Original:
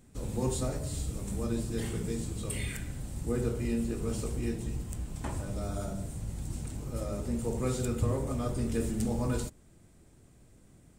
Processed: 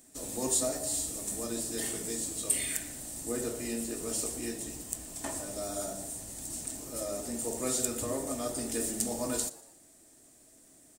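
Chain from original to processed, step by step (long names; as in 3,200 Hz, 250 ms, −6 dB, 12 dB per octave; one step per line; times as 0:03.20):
bass and treble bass −15 dB, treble +14 dB
hollow resonant body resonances 280/640/1,800 Hz, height 10 dB, ringing for 45 ms
echo with shifted repeats 118 ms, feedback 43%, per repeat +100 Hz, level −19 dB
level −1.5 dB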